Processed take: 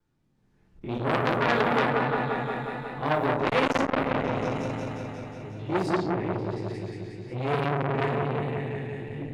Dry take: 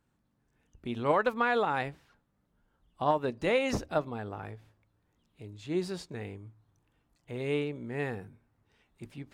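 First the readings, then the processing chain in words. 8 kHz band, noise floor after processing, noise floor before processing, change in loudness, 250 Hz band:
+1.0 dB, -66 dBFS, -75 dBFS, +4.0 dB, +7.5 dB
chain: spectrogram pixelated in time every 50 ms; level-controlled noise filter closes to 2.2 kHz, open at -28 dBFS; added noise violet -67 dBFS; level-controlled noise filter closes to 2.5 kHz, open at -26 dBFS; peaking EQ 580 Hz -2.5 dB 1.6 oct; delay with an opening low-pass 179 ms, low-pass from 750 Hz, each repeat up 1 oct, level 0 dB; level rider gain up to 6.5 dB; simulated room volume 36 m³, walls mixed, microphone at 0.63 m; vibrato 1.1 Hz 33 cents; transformer saturation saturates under 1.9 kHz; trim -1.5 dB

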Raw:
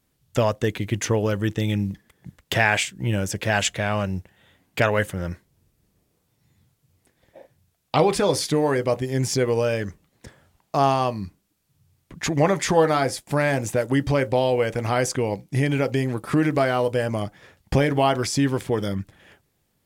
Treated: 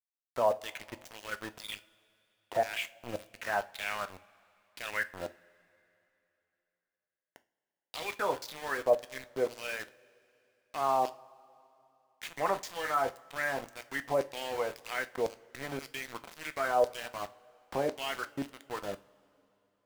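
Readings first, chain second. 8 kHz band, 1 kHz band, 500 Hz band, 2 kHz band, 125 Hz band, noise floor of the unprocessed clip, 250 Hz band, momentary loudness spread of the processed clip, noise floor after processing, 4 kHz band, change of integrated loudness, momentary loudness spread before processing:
-16.5 dB, -8.5 dB, -11.0 dB, -9.5 dB, -28.0 dB, -71 dBFS, -20.5 dB, 14 LU, under -85 dBFS, -11.5 dB, -12.0 dB, 10 LU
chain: de-esser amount 90%; treble shelf 6.8 kHz +7.5 dB; LFO band-pass saw down 1.9 Hz 560–5600 Hz; small samples zeroed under -38.5 dBFS; two-slope reverb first 0.32 s, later 3.1 s, from -21 dB, DRR 10.5 dB

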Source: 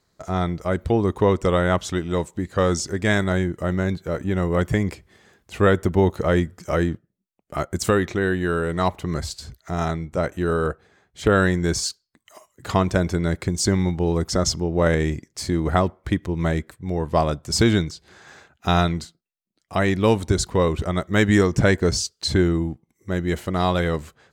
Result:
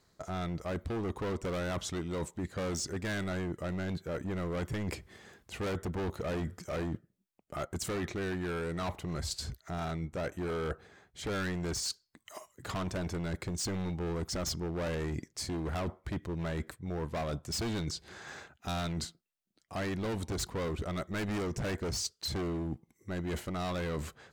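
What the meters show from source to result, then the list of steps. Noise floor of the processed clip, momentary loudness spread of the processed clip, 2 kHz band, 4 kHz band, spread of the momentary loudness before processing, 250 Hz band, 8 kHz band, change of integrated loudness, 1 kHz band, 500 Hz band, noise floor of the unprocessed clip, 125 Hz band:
-76 dBFS, 7 LU, -14.5 dB, -10.5 dB, 10 LU, -14.0 dB, -10.0 dB, -14.0 dB, -15.0 dB, -15.0 dB, -75 dBFS, -13.5 dB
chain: hard clipper -22.5 dBFS, distortion -6 dB; reverse; compression 6:1, threshold -34 dBFS, peak gain reduction 9.5 dB; reverse

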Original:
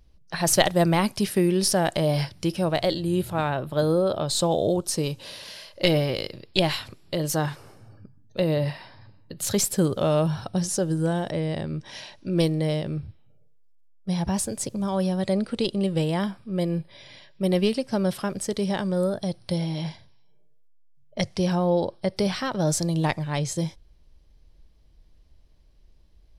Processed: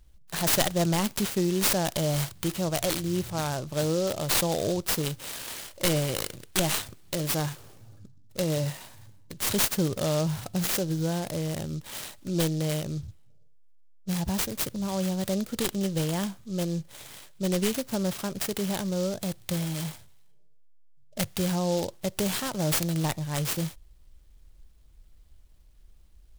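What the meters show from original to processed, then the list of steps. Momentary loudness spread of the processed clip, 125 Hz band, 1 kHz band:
11 LU, -3.0 dB, -5.0 dB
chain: high-order bell 5.1 kHz +10 dB; saturation -11 dBFS, distortion -15 dB; bass shelf 110 Hz +7 dB; delay time shaken by noise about 5 kHz, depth 0.062 ms; trim -5 dB

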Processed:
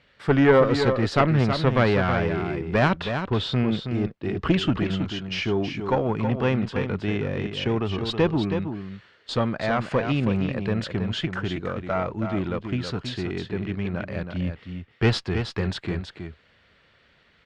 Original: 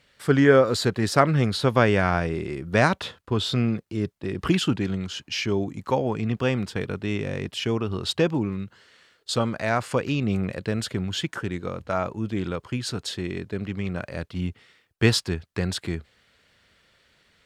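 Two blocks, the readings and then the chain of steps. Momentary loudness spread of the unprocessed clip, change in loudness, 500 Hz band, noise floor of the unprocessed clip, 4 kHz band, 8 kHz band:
11 LU, +0.5 dB, +0.5 dB, -64 dBFS, -1.5 dB, under -10 dB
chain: single-diode clipper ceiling -17.5 dBFS; low-pass 3.4 kHz 12 dB/octave; delay 322 ms -7.5 dB; trim +2.5 dB

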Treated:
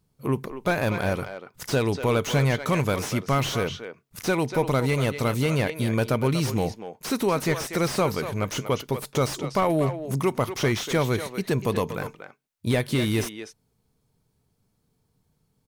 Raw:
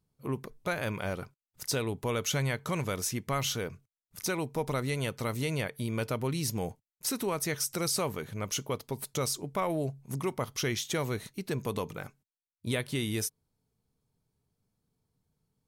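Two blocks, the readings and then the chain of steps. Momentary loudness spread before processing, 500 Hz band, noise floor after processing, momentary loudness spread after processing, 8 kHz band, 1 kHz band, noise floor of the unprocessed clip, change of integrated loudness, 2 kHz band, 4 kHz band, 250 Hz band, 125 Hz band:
7 LU, +9.0 dB, -72 dBFS, 8 LU, -1.0 dB, +8.5 dB, under -85 dBFS, +7.5 dB, +7.5 dB, +4.0 dB, +9.0 dB, +9.0 dB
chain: speakerphone echo 240 ms, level -9 dB; slew-rate limiter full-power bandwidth 56 Hz; trim +8.5 dB

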